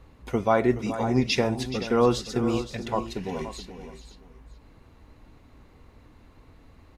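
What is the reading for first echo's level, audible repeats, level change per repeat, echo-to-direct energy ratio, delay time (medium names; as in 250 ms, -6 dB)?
-12.5 dB, 3, no regular repeats, -9.5 dB, 425 ms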